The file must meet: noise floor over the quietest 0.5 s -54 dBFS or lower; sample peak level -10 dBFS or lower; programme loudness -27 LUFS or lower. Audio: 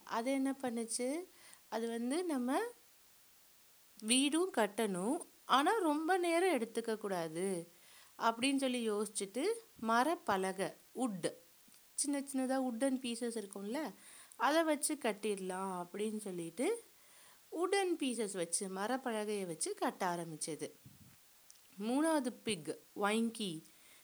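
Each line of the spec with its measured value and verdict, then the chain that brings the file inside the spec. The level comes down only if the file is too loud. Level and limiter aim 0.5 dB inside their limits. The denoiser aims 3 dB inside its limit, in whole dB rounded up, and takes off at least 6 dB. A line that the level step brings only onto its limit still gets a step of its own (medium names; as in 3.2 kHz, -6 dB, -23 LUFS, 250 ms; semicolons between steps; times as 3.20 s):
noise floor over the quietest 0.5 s -65 dBFS: pass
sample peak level -17.0 dBFS: pass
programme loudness -37.0 LUFS: pass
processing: none needed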